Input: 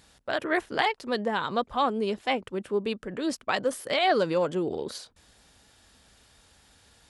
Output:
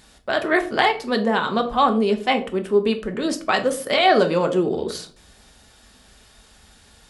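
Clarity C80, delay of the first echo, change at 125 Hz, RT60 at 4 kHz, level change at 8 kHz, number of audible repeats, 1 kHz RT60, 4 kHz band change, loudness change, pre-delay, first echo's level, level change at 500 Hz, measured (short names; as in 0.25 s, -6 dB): 17.5 dB, none, +8.0 dB, 0.30 s, +7.0 dB, none, 0.40 s, +7.0 dB, +7.5 dB, 3 ms, none, +7.5 dB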